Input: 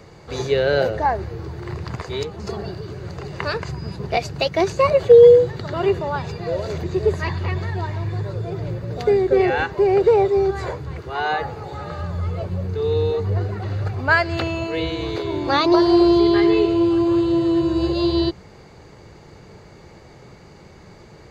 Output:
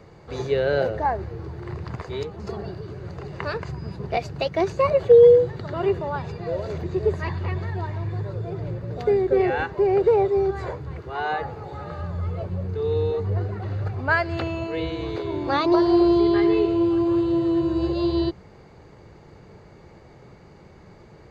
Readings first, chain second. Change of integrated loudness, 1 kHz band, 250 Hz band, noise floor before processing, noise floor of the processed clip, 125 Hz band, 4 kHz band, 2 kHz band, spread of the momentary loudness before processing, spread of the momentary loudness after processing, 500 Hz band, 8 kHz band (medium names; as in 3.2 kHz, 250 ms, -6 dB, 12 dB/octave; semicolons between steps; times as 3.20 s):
-3.5 dB, -3.5 dB, -3.0 dB, -45 dBFS, -48 dBFS, -3.0 dB, -8.0 dB, -5.0 dB, 15 LU, 15 LU, -3.0 dB, no reading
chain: treble shelf 3.2 kHz -9 dB; trim -3 dB